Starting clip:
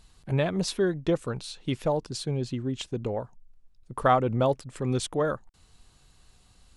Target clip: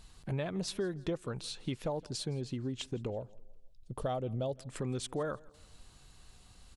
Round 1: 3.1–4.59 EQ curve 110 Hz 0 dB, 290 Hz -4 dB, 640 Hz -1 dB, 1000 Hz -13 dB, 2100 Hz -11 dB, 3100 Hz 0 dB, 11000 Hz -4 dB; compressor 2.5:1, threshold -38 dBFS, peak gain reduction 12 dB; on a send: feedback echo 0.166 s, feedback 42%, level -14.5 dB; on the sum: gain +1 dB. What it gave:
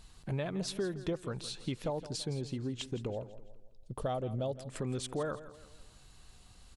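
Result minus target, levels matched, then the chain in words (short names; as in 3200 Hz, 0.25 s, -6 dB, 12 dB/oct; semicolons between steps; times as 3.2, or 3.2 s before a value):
echo-to-direct +9.5 dB
3.1–4.59 EQ curve 110 Hz 0 dB, 290 Hz -4 dB, 640 Hz -1 dB, 1000 Hz -13 dB, 2100 Hz -11 dB, 3100 Hz 0 dB, 11000 Hz -4 dB; compressor 2.5:1, threshold -38 dBFS, peak gain reduction 12 dB; on a send: feedback echo 0.166 s, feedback 42%, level -24 dB; on the sum: gain +1 dB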